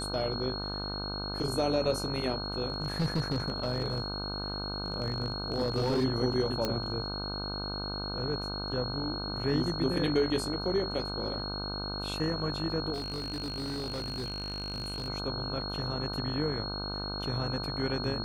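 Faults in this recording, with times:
mains buzz 50 Hz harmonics 31 −38 dBFS
whistle 4,300 Hz −37 dBFS
0:02.70–0:06.05: clipping −24 dBFS
0:06.65: click −15 dBFS
0:12.93–0:15.08: clipping −31.5 dBFS

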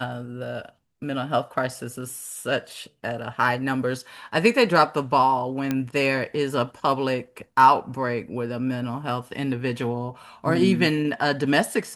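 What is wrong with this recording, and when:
0:05.71: click −11 dBFS

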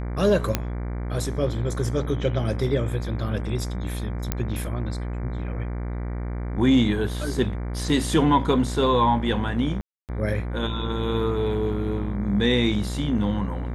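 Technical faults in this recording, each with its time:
mains buzz 60 Hz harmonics 39 −29 dBFS
0:00.55: click −6 dBFS
0:04.32: click −8 dBFS
0:09.81–0:10.09: drop-out 278 ms

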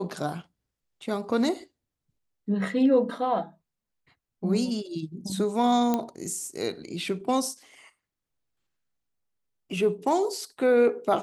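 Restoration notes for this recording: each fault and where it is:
0:05.94: click −12 dBFS

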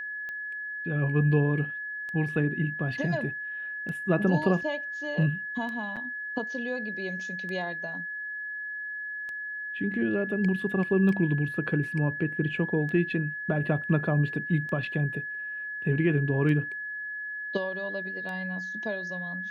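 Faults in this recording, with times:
scratch tick 33 1/3 rpm −26 dBFS
whistle 1,700 Hz −33 dBFS
0:05.96–0:05.97: drop-out 6.4 ms

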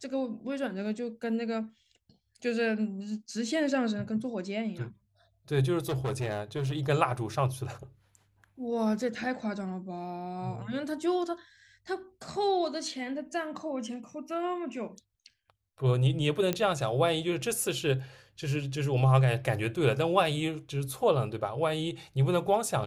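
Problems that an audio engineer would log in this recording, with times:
0:05.89–0:06.80: clipping −27 dBFS
0:16.53: click −14 dBFS

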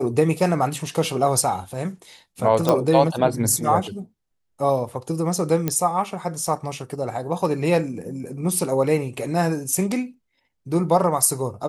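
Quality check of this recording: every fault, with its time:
0:02.69: click −6 dBFS
0:05.68: click −8 dBFS

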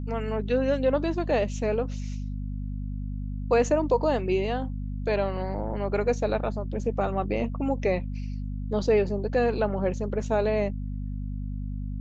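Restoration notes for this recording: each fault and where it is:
mains hum 50 Hz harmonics 5 −32 dBFS

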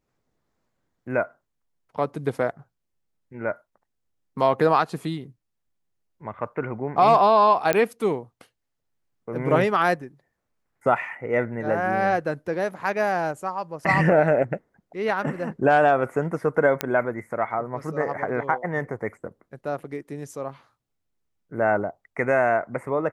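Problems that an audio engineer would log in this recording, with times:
0:07.73: click −6 dBFS
0:16.81: click −7 dBFS

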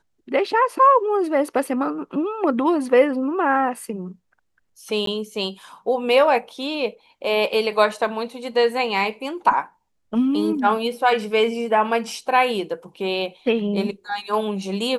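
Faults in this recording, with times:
0:05.06–0:05.07: drop-out 13 ms

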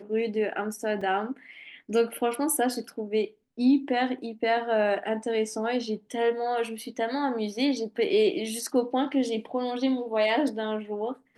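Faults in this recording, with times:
0:01.01: drop-out 4 ms

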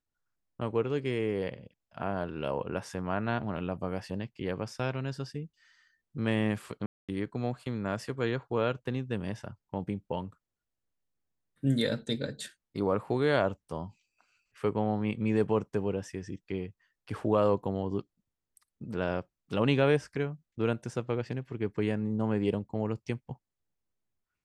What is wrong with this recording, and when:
0:06.86–0:07.09: drop-out 226 ms

